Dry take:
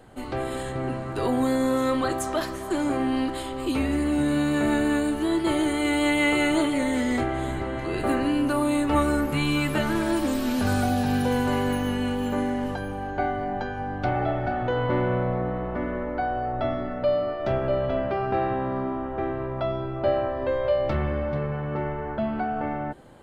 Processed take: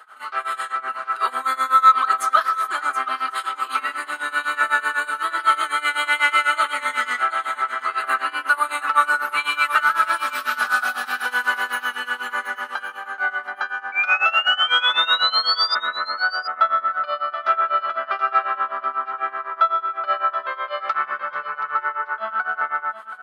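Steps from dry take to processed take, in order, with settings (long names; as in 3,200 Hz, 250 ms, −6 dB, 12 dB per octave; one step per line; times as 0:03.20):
high-pass with resonance 1,300 Hz, resonance Q 8
parametric band 7,300 Hz −6 dB 0.24 octaves
comb filter 4.7 ms, depth 41%
sound drawn into the spectrogram rise, 0:13.92–0:15.75, 2,300–4,900 Hz −23 dBFS
in parallel at −8 dB: soft clipping −13.5 dBFS, distortion −17 dB
on the sum: amplitude tremolo 8 Hz, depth 91%
single-tap delay 727 ms −12 dB
level +3 dB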